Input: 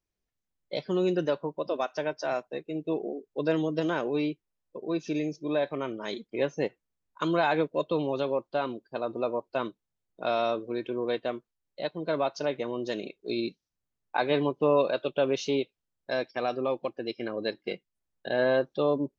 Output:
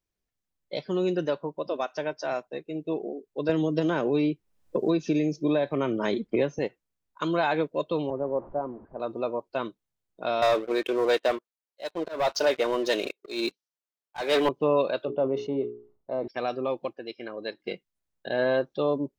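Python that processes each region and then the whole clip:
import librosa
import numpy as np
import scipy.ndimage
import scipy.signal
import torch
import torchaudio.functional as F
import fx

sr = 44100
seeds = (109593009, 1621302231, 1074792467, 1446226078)

y = fx.chain(x, sr, fx.low_shelf(hz=420.0, db=6.0),
    fx.band_squash(depth_pct=100), at=(3.49, 6.59))
y = fx.chain(y, sr, fx.delta_mod(bps=32000, step_db=-37.5),
    fx.lowpass(hz=1000.0, slope=24),
    fx.band_widen(depth_pct=70), at=(8.1, 9.0))
y = fx.chain(y, sr, fx.highpass(hz=460.0, slope=12),
    fx.leveller(passes=3),
    fx.auto_swell(attack_ms=226.0), at=(10.42, 14.49))
y = fx.chain(y, sr, fx.savgol(points=65),
    fx.hum_notches(base_hz=60, count=7),
    fx.sustainer(db_per_s=120.0), at=(15.05, 16.28))
y = fx.chain(y, sr, fx.lowpass(hz=1500.0, slope=6),
    fx.tilt_eq(slope=3.0), at=(16.93, 17.6))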